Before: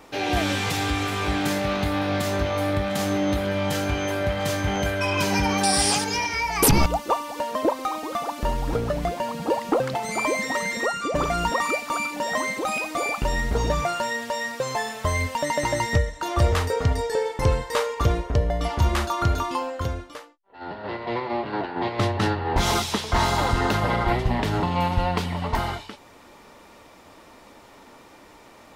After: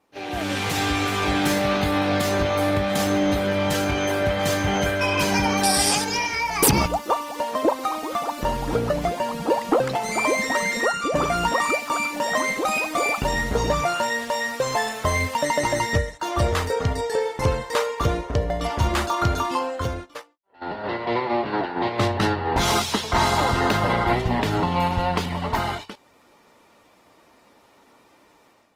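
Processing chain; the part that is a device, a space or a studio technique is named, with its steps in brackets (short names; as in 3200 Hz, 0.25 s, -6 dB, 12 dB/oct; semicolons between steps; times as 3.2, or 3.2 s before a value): video call (HPF 100 Hz 6 dB/oct; AGC gain up to 11 dB; gate -28 dBFS, range -11 dB; gain -6.5 dB; Opus 20 kbps 48000 Hz)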